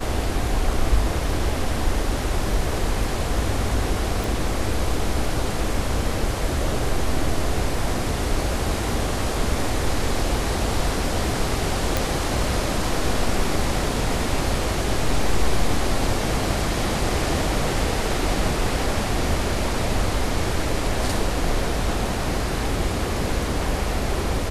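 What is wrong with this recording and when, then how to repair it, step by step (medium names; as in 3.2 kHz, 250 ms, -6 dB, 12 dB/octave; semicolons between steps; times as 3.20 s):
4.24 s: pop
11.97 s: pop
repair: de-click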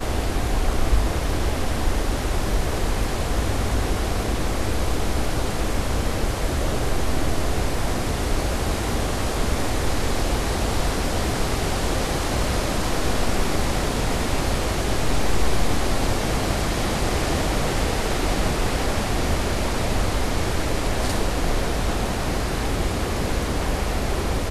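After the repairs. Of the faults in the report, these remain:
nothing left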